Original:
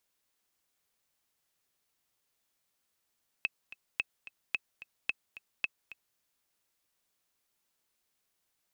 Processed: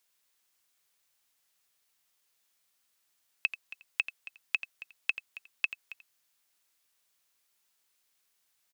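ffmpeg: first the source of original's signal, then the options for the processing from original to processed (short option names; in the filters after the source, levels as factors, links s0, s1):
-f lavfi -i "aevalsrc='pow(10,(-16-16.5*gte(mod(t,2*60/219),60/219))/20)*sin(2*PI*2600*mod(t,60/219))*exp(-6.91*mod(t,60/219)/0.03)':d=2.73:s=44100"
-af "tiltshelf=f=780:g=-5,aecho=1:1:86:0.224"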